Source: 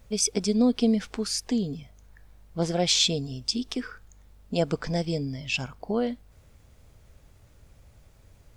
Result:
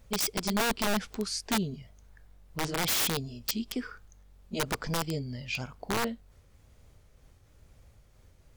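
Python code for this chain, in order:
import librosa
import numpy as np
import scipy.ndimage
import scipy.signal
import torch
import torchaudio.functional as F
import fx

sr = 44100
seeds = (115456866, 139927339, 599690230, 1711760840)

y = fx.pitch_ramps(x, sr, semitones=-1.5, every_ms=935)
y = (np.mod(10.0 ** (19.5 / 20.0) * y + 1.0, 2.0) - 1.0) / 10.0 ** (19.5 / 20.0)
y = y * librosa.db_to_amplitude(-2.5)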